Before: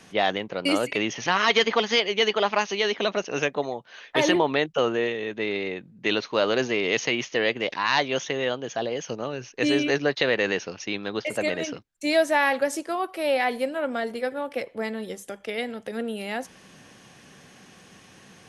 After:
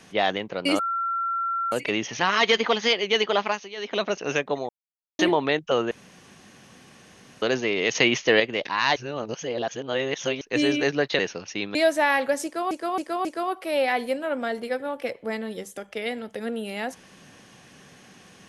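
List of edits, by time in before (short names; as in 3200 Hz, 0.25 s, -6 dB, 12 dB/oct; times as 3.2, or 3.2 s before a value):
0.79 add tone 1360 Hz -23.5 dBFS 0.93 s
2.49–3.08 dip -13.5 dB, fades 0.26 s
3.76–4.26 mute
4.98–6.49 room tone
7.02–7.47 gain +5.5 dB
8.03–9.48 reverse
10.26–10.51 cut
11.07–12.08 cut
12.77–13.04 loop, 4 plays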